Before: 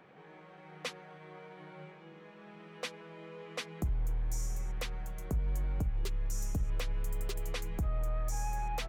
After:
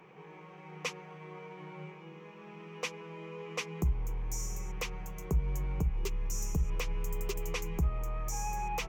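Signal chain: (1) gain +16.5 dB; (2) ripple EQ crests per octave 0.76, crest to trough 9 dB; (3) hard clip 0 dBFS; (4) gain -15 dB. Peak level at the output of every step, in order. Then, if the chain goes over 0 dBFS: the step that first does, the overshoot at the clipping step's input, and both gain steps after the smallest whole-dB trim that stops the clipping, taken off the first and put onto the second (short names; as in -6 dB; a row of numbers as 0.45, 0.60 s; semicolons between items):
-9.0, -5.5, -5.5, -20.5 dBFS; no overload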